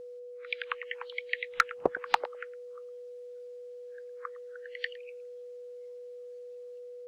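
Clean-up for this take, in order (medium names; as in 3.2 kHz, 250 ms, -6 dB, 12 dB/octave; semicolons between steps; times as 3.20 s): clip repair -12.5 dBFS; band-stop 490 Hz, Q 30; inverse comb 110 ms -22 dB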